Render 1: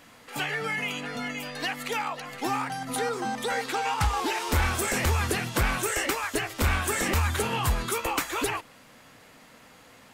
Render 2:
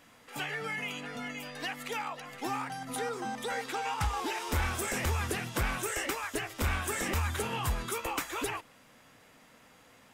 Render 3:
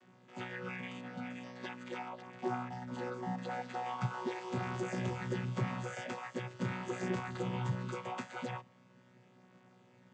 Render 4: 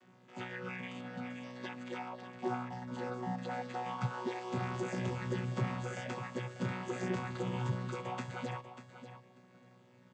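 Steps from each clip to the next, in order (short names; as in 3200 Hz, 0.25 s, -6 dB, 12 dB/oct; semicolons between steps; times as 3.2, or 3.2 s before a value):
notch 4300 Hz, Q 17; gain -6 dB
chord vocoder bare fifth, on B2; gain -2.5 dB
feedback echo 0.591 s, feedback 17%, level -11.5 dB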